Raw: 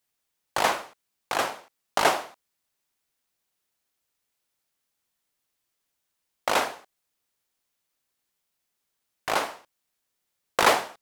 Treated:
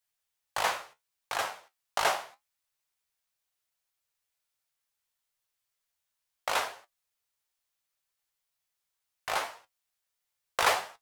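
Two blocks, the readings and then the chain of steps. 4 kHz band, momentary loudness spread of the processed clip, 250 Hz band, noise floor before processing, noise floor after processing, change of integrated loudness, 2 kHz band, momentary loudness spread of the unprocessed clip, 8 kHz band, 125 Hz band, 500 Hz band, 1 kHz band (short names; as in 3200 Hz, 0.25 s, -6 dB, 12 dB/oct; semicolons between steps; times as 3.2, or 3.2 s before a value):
-4.0 dB, 13 LU, -15.0 dB, -80 dBFS, -84 dBFS, -5.5 dB, -4.5 dB, 13 LU, -4.0 dB, -8.5 dB, -8.0 dB, -5.5 dB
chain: bell 260 Hz -13 dB 1.4 oct; flange 0.73 Hz, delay 8.3 ms, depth 9.7 ms, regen +53%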